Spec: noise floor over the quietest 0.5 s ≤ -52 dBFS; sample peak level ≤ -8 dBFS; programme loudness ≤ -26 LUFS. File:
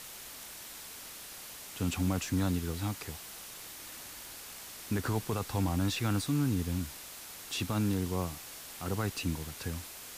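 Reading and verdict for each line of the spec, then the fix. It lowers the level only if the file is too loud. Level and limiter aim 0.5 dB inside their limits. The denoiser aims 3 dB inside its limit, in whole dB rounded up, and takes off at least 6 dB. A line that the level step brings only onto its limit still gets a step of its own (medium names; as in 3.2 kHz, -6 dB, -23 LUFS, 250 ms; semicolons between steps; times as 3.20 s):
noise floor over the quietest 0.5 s -47 dBFS: fail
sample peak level -20.5 dBFS: pass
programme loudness -35.0 LUFS: pass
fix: noise reduction 8 dB, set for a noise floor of -47 dBFS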